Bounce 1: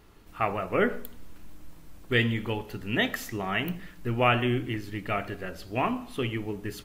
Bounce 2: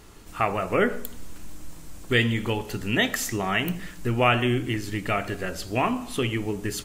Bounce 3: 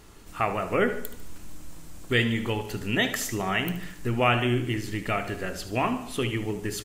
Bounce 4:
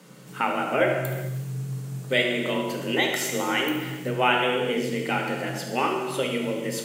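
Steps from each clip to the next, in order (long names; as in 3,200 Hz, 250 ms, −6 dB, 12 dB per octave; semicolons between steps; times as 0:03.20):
parametric band 7,600 Hz +9.5 dB 1.1 octaves; in parallel at +1 dB: downward compressor, threshold −32 dBFS, peak gain reduction 14.5 dB
repeating echo 74 ms, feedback 46%, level −13 dB; level −2 dB
frequency shifter +130 Hz; reverb whose tail is shaped and stops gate 460 ms falling, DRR 2 dB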